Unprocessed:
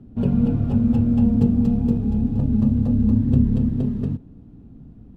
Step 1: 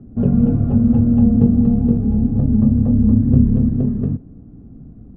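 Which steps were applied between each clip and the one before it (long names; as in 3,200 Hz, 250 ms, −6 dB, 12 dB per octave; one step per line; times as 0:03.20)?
low-pass filter 1,300 Hz 12 dB per octave
notch filter 920 Hz, Q 6
level +4.5 dB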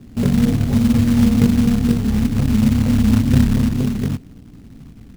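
floating-point word with a short mantissa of 2 bits
level −1 dB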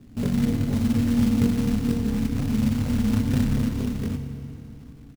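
repeating echo 387 ms, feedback 53%, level −20 dB
feedback delay network reverb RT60 2.9 s, high-frequency decay 0.7×, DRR 7 dB
level −7.5 dB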